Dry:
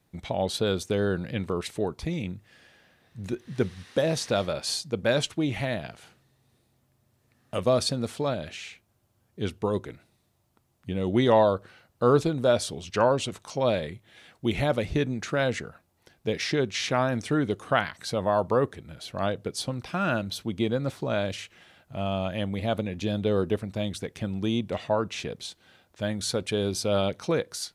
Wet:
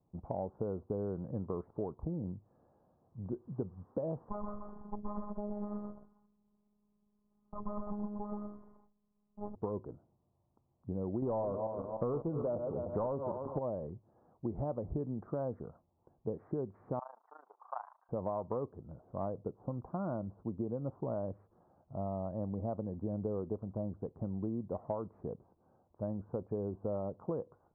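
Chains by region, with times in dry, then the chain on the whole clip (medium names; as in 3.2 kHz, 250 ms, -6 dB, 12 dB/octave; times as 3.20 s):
4.29–9.55 s: comb filter that takes the minimum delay 0.95 ms + robot voice 207 Hz + delay 125 ms -3.5 dB
11.22–13.59 s: backward echo that repeats 150 ms, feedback 49%, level -10 dB + waveshaping leveller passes 2
16.99–18.09 s: companding laws mixed up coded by mu + elliptic band-pass 840–4100 Hz, stop band 80 dB + AM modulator 27 Hz, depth 75%
whole clip: steep low-pass 1.1 kHz 48 dB/octave; compression 10:1, threshold -27 dBFS; trim -5.5 dB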